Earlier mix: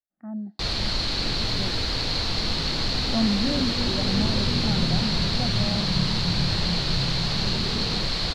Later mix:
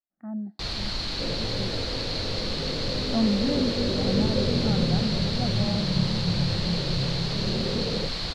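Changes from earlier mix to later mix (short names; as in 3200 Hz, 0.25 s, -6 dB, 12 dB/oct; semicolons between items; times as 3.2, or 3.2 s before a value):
first sound -4.5 dB; second sound: add synth low-pass 560 Hz, resonance Q 3.7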